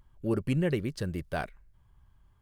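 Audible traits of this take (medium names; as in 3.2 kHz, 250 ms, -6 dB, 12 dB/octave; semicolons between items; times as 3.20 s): noise floor -64 dBFS; spectral tilt -6.0 dB/octave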